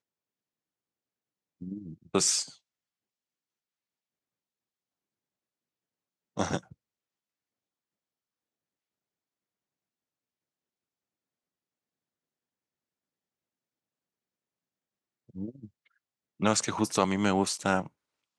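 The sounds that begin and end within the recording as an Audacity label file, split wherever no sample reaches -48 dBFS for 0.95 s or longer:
1.610000	2.550000	sound
6.370000	6.720000	sound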